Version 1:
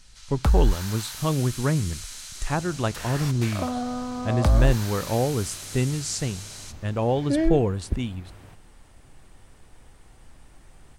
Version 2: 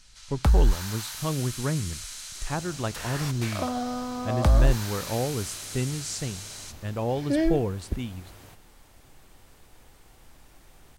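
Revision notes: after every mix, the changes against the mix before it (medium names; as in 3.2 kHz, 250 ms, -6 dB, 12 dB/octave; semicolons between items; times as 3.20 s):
speech -4.5 dB; second sound: add tone controls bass -4 dB, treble +11 dB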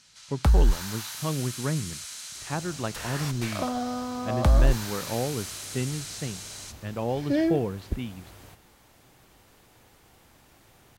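speech: add Chebyshev band-pass 140–3200 Hz, order 2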